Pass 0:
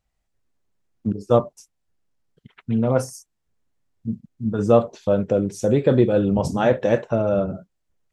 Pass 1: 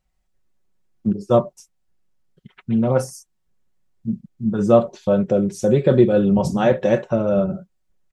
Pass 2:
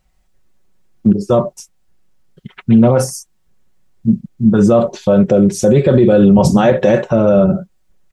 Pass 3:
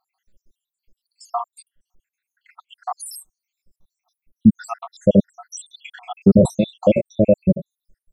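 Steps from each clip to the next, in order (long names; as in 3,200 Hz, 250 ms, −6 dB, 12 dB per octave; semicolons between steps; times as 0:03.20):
low-shelf EQ 200 Hz +3 dB; comb filter 5.4 ms, depth 52%
boost into a limiter +12.5 dB; level −1 dB
time-frequency cells dropped at random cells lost 84%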